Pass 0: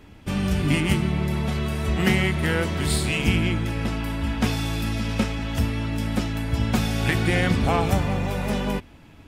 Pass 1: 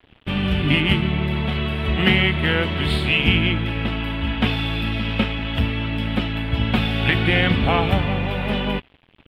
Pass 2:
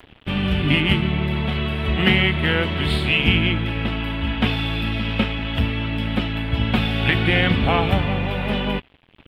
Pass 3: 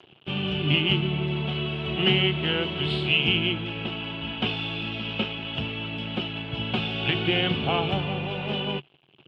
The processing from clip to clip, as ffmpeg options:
-af "aeval=exprs='sgn(val(0))*max(abs(val(0))-0.00531,0)':c=same,highshelf=f=4.5k:t=q:w=3:g=-13,volume=2.5dB"
-af "acompressor=mode=upward:threshold=-39dB:ratio=2.5"
-af "highpass=140,equalizer=f=140:t=q:w=4:g=9,equalizer=f=260:t=q:w=4:g=-5,equalizer=f=370:t=q:w=4:g=8,equalizer=f=750:t=q:w=4:g=3,equalizer=f=1.9k:t=q:w=4:g=-8,equalizer=f=2.9k:t=q:w=4:g=9,lowpass=f=6.9k:w=0.5412,lowpass=f=6.9k:w=1.3066,volume=-7.5dB"

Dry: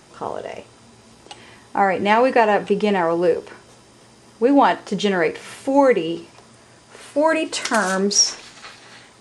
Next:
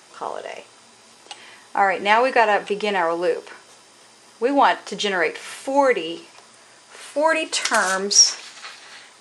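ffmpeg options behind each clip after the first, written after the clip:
-af "highpass=f=900:p=1,volume=3dB"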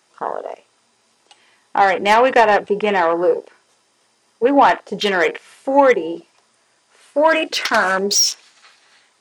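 -filter_complex "[0:a]afwtdn=0.0355,acrossover=split=840[a][b];[b]asoftclip=type=tanh:threshold=-17dB[c];[a][c]amix=inputs=2:normalize=0,volume=5.5dB"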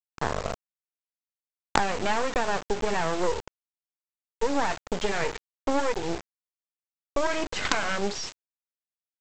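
-af "lowpass=1.9k,acompressor=threshold=-20dB:ratio=12,aresample=16000,acrusher=bits=3:dc=4:mix=0:aa=0.000001,aresample=44100,volume=1.5dB"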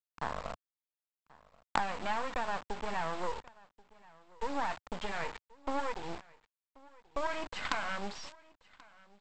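-af "equalizer=f=100:t=o:w=0.67:g=-9,equalizer=f=400:t=o:w=0.67:g=-8,equalizer=f=1k:t=o:w=0.67:g=4,equalizer=f=6.3k:t=o:w=0.67:g=-8,aecho=1:1:1083:0.0668,volume=-8.5dB"

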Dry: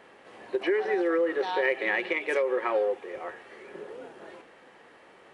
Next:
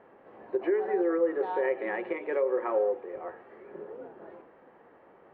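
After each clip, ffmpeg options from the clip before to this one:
-af "lowpass=1.1k,bandreject=f=62.08:t=h:w=4,bandreject=f=124.16:t=h:w=4,bandreject=f=186.24:t=h:w=4,bandreject=f=248.32:t=h:w=4,bandreject=f=310.4:t=h:w=4,bandreject=f=372.48:t=h:w=4,bandreject=f=434.56:t=h:w=4,bandreject=f=496.64:t=h:w=4,bandreject=f=558.72:t=h:w=4,bandreject=f=620.8:t=h:w=4,bandreject=f=682.88:t=h:w=4,bandreject=f=744.96:t=h:w=4,bandreject=f=807.04:t=h:w=4,bandreject=f=869.12:t=h:w=4,bandreject=f=931.2:t=h:w=4,bandreject=f=993.28:t=h:w=4,bandreject=f=1.05536k:t=h:w=4,bandreject=f=1.11744k:t=h:w=4,bandreject=f=1.17952k:t=h:w=4,bandreject=f=1.2416k:t=h:w=4,bandreject=f=1.30368k:t=h:w=4"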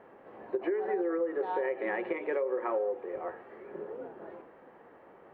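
-af "acompressor=threshold=-29dB:ratio=6,volume=1.5dB"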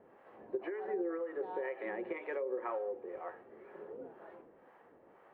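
-filter_complex "[0:a]acrossover=split=580[a][b];[a]aeval=exprs='val(0)*(1-0.7/2+0.7/2*cos(2*PI*2*n/s))':c=same[c];[b]aeval=exprs='val(0)*(1-0.7/2-0.7/2*cos(2*PI*2*n/s))':c=same[d];[c][d]amix=inputs=2:normalize=0,volume=-3dB"

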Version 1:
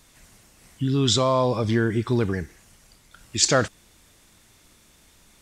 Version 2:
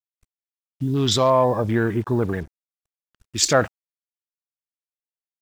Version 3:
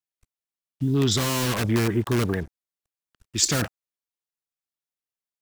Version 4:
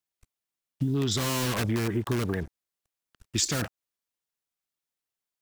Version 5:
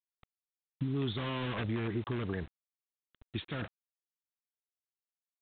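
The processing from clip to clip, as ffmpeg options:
-af "afwtdn=0.0178,acrusher=bits=7:mix=0:aa=0.5,adynamicequalizer=threshold=0.0251:dfrequency=770:dqfactor=1.1:tfrequency=770:tqfactor=1.1:attack=5:release=100:ratio=0.375:range=3:mode=boostabove:tftype=bell"
-filter_complex "[0:a]acrossover=split=370|1500|4700[a][b][c][d];[b]aeval=exprs='(mod(15*val(0)+1,2)-1)/15':c=same[e];[c]alimiter=limit=-22dB:level=0:latency=1:release=138[f];[a][e][f][d]amix=inputs=4:normalize=0"
-af "acompressor=threshold=-27dB:ratio=6,volume=3dB"
-af "alimiter=limit=-18.5dB:level=0:latency=1:release=309,aresample=8000,acrusher=bits=7:mix=0:aa=0.000001,aresample=44100,volume=-5.5dB"

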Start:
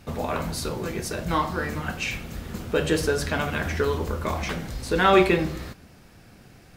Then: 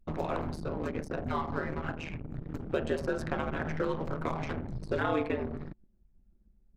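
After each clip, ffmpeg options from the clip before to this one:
-filter_complex "[0:a]aeval=exprs='val(0)*sin(2*PI*78*n/s)':c=same,acrossover=split=520|1500[a][b][c];[a]acompressor=threshold=-31dB:ratio=4[d];[b]acompressor=threshold=-33dB:ratio=4[e];[c]acompressor=threshold=-46dB:ratio=4[f];[d][e][f]amix=inputs=3:normalize=0,anlmdn=1"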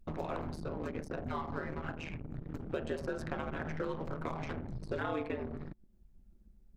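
-af "acompressor=threshold=-53dB:ratio=1.5,volume=3.5dB"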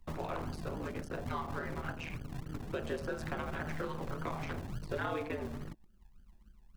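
-filter_complex "[0:a]acrossover=split=200|770[a][b][c];[a]acrusher=samples=40:mix=1:aa=0.000001:lfo=1:lforange=24:lforate=3.5[d];[b]flanger=delay=18.5:depth=3.6:speed=2.8[e];[d][e][c]amix=inputs=3:normalize=0,volume=1.5dB"

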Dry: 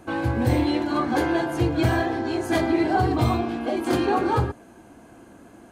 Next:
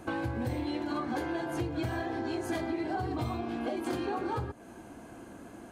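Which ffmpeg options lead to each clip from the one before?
-af "acompressor=threshold=-31dB:ratio=6"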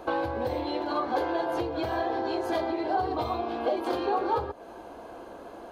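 -af "equalizer=f=125:t=o:w=1:g=-10,equalizer=f=250:t=o:w=1:g=-6,equalizer=f=500:t=o:w=1:g=9,equalizer=f=1k:t=o:w=1:g=6,equalizer=f=2k:t=o:w=1:g=-4,equalizer=f=4k:t=o:w=1:g=7,equalizer=f=8k:t=o:w=1:g=-11,volume=2dB"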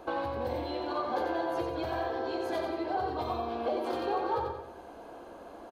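-af "aecho=1:1:90|180|270|360|450:0.562|0.242|0.104|0.0447|0.0192,volume=-5dB"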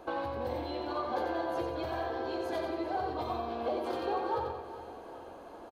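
-af "aecho=1:1:401|802|1203|1604|2005|2406:0.188|0.107|0.0612|0.0349|0.0199|0.0113,volume=-2dB"

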